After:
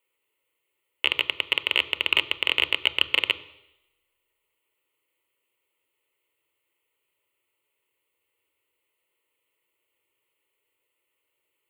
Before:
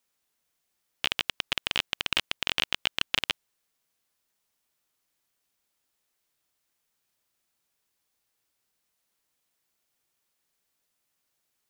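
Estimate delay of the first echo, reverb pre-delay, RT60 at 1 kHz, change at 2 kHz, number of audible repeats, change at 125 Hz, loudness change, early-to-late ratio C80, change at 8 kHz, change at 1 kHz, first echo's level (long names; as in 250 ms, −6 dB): no echo audible, 3 ms, 0.90 s, +7.0 dB, no echo audible, −3.0 dB, +5.5 dB, 19.5 dB, −8.5 dB, +1.5 dB, no echo audible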